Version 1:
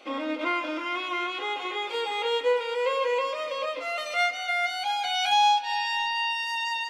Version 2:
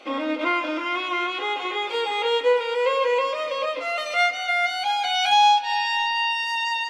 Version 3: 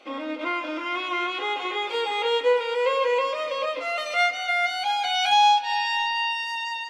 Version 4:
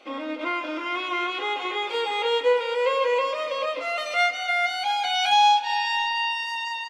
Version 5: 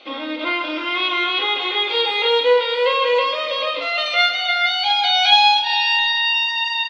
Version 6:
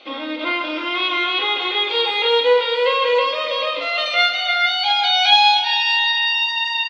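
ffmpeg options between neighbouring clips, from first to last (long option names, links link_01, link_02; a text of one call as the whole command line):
ffmpeg -i in.wav -af "highshelf=frequency=9000:gain=-6.5,volume=4.5dB" out.wav
ffmpeg -i in.wav -af "dynaudnorm=framelen=330:gausssize=5:maxgain=4.5dB,volume=-5.5dB" out.wav
ffmpeg -i in.wav -filter_complex "[0:a]asplit=6[link_01][link_02][link_03][link_04][link_05][link_06];[link_02]adelay=165,afreqshift=31,volume=-23dB[link_07];[link_03]adelay=330,afreqshift=62,volume=-26.9dB[link_08];[link_04]adelay=495,afreqshift=93,volume=-30.8dB[link_09];[link_05]adelay=660,afreqshift=124,volume=-34.6dB[link_10];[link_06]adelay=825,afreqshift=155,volume=-38.5dB[link_11];[link_01][link_07][link_08][link_09][link_10][link_11]amix=inputs=6:normalize=0" out.wav
ffmpeg -i in.wav -filter_complex "[0:a]lowpass=frequency=3900:width_type=q:width=3.5,asplit=2[link_01][link_02];[link_02]adelay=49,volume=-6dB[link_03];[link_01][link_03]amix=inputs=2:normalize=0,volume=3dB" out.wav
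ffmpeg -i in.wav -af "aecho=1:1:394:0.2" out.wav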